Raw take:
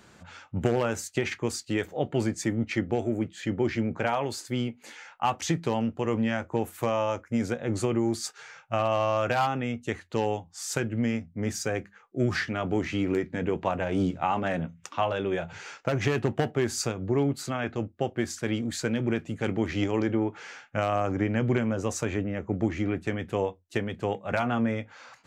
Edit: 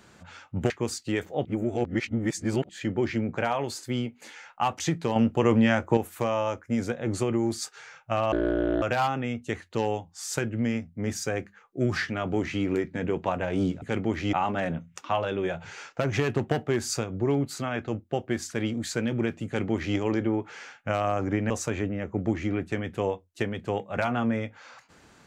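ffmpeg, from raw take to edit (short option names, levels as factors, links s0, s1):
-filter_complex "[0:a]asplit=11[s0][s1][s2][s3][s4][s5][s6][s7][s8][s9][s10];[s0]atrim=end=0.702[s11];[s1]atrim=start=1.318:end=2.072[s12];[s2]atrim=start=2.068:end=3.312,asetpts=PTS-STARTPTS,areverse[s13];[s3]atrim=start=3.308:end=5.782[s14];[s4]atrim=start=5.778:end=6.592,asetpts=PTS-STARTPTS,volume=2[s15];[s5]atrim=start=6.588:end=8.944[s16];[s6]atrim=start=8.94:end=9.21,asetpts=PTS-STARTPTS,asetrate=23814,aresample=44100[s17];[s7]atrim=start=9.206:end=14.212[s18];[s8]atrim=start=19.338:end=19.852[s19];[s9]atrim=start=14.208:end=21.382[s20];[s10]atrim=start=21.848[s21];[s11][s12]acrossfade=d=0.004:c1=hsin:c2=hsin[s22];[s22][s13]acrossfade=d=0.004:c1=hsin:c2=hsin[s23];[s23][s14]acrossfade=d=0.004:c1=hsin:c2=hsin[s24];[s24][s15]acrossfade=d=0.004:c1=hsin:c2=hsin[s25];[s25][s16]acrossfade=d=0.004:c1=hsin:c2=hsin[s26];[s26][s17]acrossfade=d=0.004:c1=hsin:c2=hsin[s27];[s27][s18]acrossfade=d=0.004:c1=hsin:c2=hsin[s28];[s28][s19]acrossfade=d=0.004:c1=hsin:c2=hsin[s29];[s29][s20]acrossfade=d=0.004:c1=hsin:c2=hsin[s30];[s30][s21]acrossfade=d=0.004:c1=hsin:c2=hsin"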